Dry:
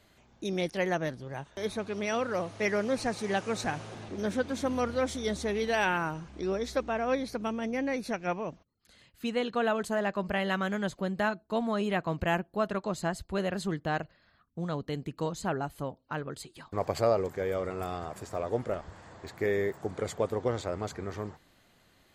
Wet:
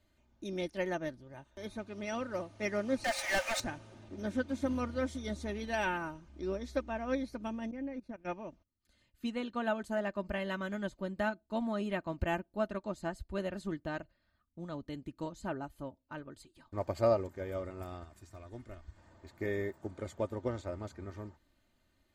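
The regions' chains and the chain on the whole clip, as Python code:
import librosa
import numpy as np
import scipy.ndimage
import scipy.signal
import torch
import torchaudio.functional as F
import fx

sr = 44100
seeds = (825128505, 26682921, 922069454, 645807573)

y = fx.chain(x, sr, fx.cheby_ripple_highpass(hz=520.0, ripple_db=9),
    fx.tilt_eq(slope=1.5),
    fx.leveller(passes=5), at=(3.04, 3.6))
y = fx.chain(y, sr, fx.level_steps(step_db=17),
    fx.lowpass(hz=1300.0, slope=6), at=(7.71, 8.25))
y = fx.chain(y, sr, fx.peak_eq(hz=540.0, db=-10.5, octaves=2.1),
    fx.comb(ms=2.8, depth=0.33), at=(18.03, 18.97))
y = fx.low_shelf(y, sr, hz=210.0, db=9.5)
y = y + 0.54 * np.pad(y, (int(3.3 * sr / 1000.0), 0))[:len(y)]
y = fx.upward_expand(y, sr, threshold_db=-38.0, expansion=1.5)
y = y * librosa.db_to_amplitude(-5.0)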